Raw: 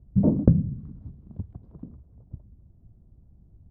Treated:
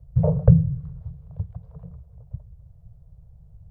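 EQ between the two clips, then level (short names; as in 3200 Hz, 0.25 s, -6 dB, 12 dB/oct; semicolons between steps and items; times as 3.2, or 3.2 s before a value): Chebyshev band-stop 170–440 Hz, order 5; +6.5 dB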